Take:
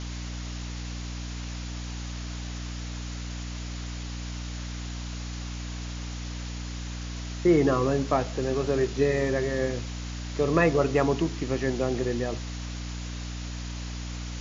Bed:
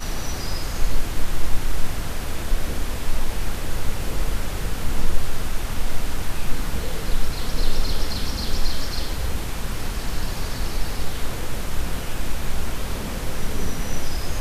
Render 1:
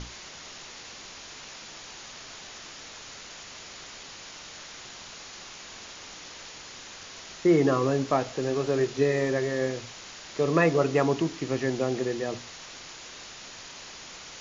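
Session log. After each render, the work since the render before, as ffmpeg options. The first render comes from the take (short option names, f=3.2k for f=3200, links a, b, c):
-af "bandreject=f=60:t=h:w=6,bandreject=f=120:t=h:w=6,bandreject=f=180:t=h:w=6,bandreject=f=240:t=h:w=6,bandreject=f=300:t=h:w=6"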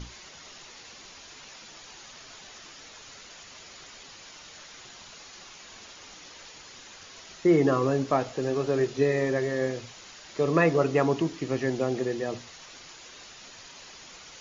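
-af "afftdn=nr=6:nf=-44"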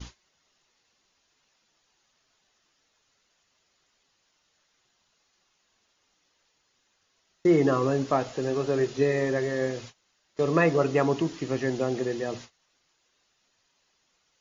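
-af "agate=range=-24dB:threshold=-42dB:ratio=16:detection=peak,bandreject=f=2.3k:w=28"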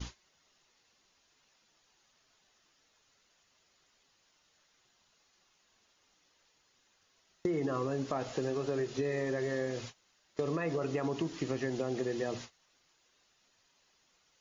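-af "alimiter=limit=-17.5dB:level=0:latency=1:release=30,acompressor=threshold=-30dB:ratio=6"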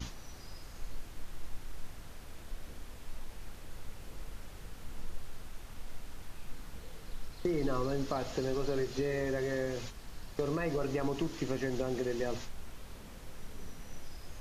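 -filter_complex "[1:a]volume=-21dB[a];[0:a][a]amix=inputs=2:normalize=0"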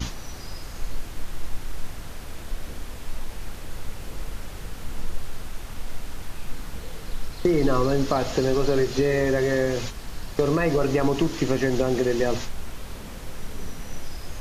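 -af "volume=11.5dB"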